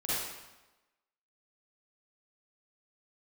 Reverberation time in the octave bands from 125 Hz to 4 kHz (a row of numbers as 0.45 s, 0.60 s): 1.0 s, 1.0 s, 1.0 s, 1.1 s, 1.0 s, 0.90 s